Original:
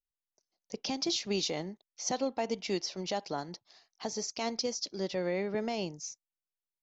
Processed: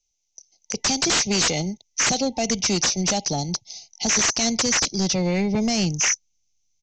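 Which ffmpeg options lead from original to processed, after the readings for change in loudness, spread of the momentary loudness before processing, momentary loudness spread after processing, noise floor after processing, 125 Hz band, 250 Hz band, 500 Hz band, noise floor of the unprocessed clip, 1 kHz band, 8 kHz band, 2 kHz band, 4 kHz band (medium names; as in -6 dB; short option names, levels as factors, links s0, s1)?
+13.5 dB, 11 LU, 8 LU, -74 dBFS, +16.5 dB, +12.5 dB, +6.0 dB, under -85 dBFS, +9.5 dB, no reading, +17.0 dB, +13.5 dB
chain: -filter_complex "[0:a]afftfilt=real='re*(1-between(b*sr/4096,900,2000))':imag='im*(1-between(b*sr/4096,900,2000))':win_size=4096:overlap=0.75,asubboost=boost=5.5:cutoff=190,lowpass=f=6100:t=q:w=11,acrossover=split=170[s0][s1];[s1]aeval=exprs='(mod(3.76*val(0)+1,2)-1)/3.76':c=same[s2];[s0][s2]amix=inputs=2:normalize=0,equalizer=f=330:w=0.43:g=-3,aresample=16000,aeval=exprs='0.266*sin(PI/2*5.01*val(0)/0.266)':c=same,aresample=44100,volume=0.562"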